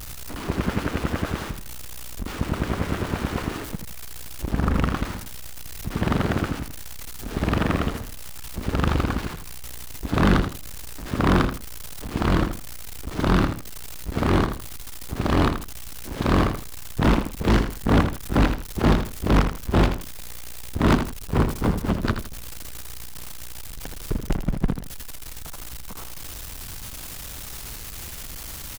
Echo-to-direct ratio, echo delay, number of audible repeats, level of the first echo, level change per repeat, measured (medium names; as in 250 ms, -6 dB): -8.0 dB, 81 ms, 2, -8.5 dB, -11.0 dB